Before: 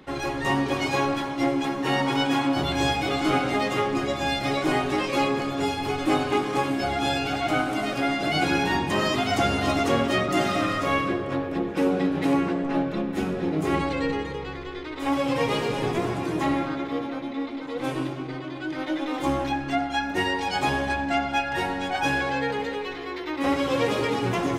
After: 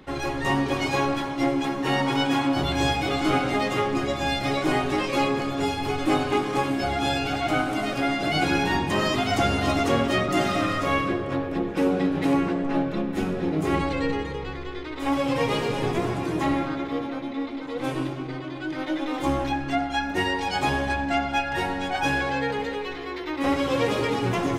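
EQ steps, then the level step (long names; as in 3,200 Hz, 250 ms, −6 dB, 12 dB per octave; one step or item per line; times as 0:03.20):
low-shelf EQ 63 Hz +8 dB
0.0 dB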